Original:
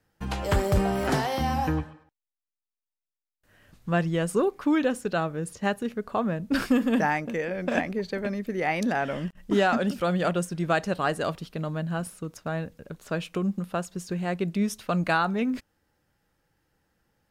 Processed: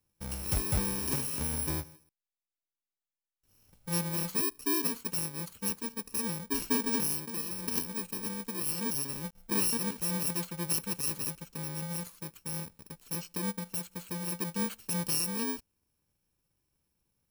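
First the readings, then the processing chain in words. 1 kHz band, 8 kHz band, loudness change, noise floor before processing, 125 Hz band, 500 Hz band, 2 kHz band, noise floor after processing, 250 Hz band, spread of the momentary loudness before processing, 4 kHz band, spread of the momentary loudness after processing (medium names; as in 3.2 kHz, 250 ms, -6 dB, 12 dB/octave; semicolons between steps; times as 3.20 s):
-14.0 dB, +9.5 dB, -4.5 dB, under -85 dBFS, -8.0 dB, -14.0 dB, -12.5 dB, under -85 dBFS, -9.5 dB, 9 LU, -0.5 dB, 9 LU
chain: bit-reversed sample order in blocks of 64 samples; trim -7 dB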